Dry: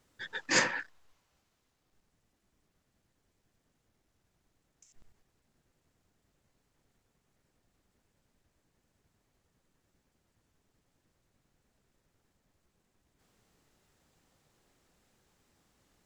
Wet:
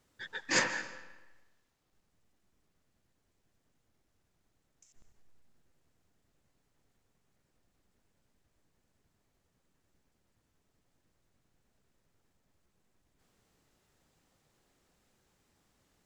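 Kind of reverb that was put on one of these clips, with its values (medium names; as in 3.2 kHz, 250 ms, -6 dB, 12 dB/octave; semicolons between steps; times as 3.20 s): algorithmic reverb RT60 1.1 s, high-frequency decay 0.85×, pre-delay 105 ms, DRR 13 dB; trim -2 dB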